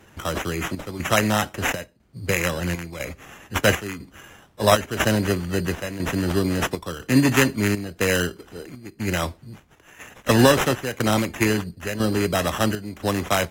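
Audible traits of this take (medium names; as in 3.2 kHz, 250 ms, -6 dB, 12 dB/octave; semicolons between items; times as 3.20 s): chopped level 1 Hz, depth 65%, duty 75%; aliases and images of a low sample rate 4.5 kHz, jitter 0%; AAC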